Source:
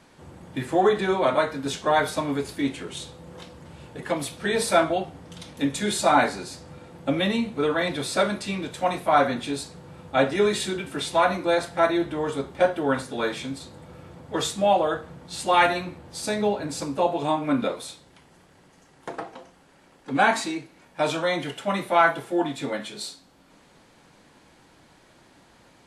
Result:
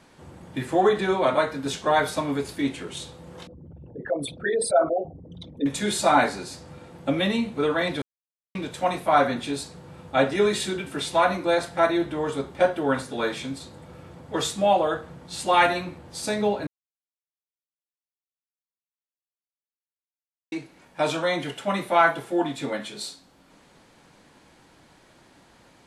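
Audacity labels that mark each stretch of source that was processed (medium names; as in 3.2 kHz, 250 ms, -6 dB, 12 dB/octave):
3.470000	5.660000	resonances exaggerated exponent 3
8.020000	8.550000	mute
16.670000	20.520000	mute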